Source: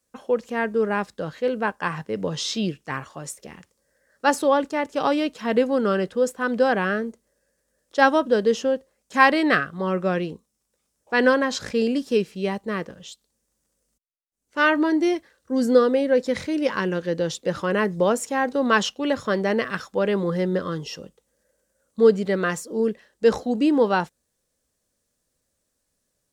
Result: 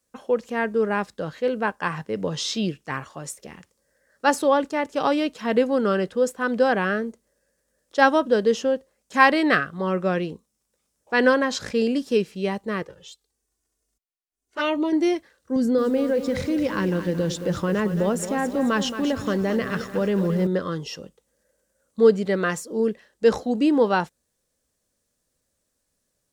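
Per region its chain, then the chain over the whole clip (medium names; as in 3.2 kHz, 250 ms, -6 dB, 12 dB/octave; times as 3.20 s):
12.82–14.93 s: peaking EQ 300 Hz -3 dB 0.24 oct + touch-sensitive flanger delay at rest 2.8 ms, full sweep at -18 dBFS
15.56–20.47 s: bass shelf 270 Hz +11.5 dB + compression 2:1, threshold -23 dBFS + bit-crushed delay 222 ms, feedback 55%, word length 7-bit, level -10 dB
whole clip: none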